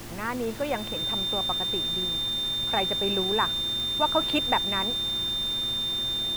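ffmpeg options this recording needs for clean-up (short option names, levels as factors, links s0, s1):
-af "adeclick=t=4,bandreject=f=114.8:t=h:w=4,bandreject=f=229.6:t=h:w=4,bandreject=f=344.4:t=h:w=4,bandreject=f=3600:w=30,afftdn=nr=30:nf=-30"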